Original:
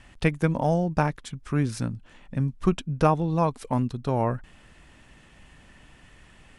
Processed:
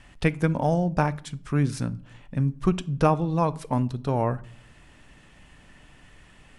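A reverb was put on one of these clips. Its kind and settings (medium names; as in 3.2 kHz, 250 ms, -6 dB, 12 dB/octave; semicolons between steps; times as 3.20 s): simulated room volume 710 m³, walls furnished, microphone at 0.36 m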